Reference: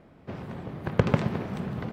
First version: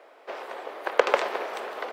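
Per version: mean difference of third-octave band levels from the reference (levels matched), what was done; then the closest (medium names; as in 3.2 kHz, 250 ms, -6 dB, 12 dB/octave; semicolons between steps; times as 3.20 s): 12.0 dB: inverse Chebyshev high-pass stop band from 180 Hz, stop band 50 dB; trim +8 dB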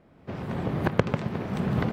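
4.0 dB: recorder AGC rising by 22 dB/s; trim -5 dB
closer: second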